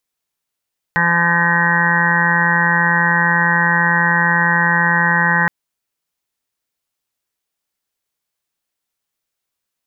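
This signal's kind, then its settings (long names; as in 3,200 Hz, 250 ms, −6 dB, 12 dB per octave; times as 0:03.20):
steady harmonic partials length 4.52 s, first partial 171 Hz, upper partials −15/−10/−18.5/−1/−1.5/−9/−17/1.5/−0.5/3.5 dB, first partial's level −20 dB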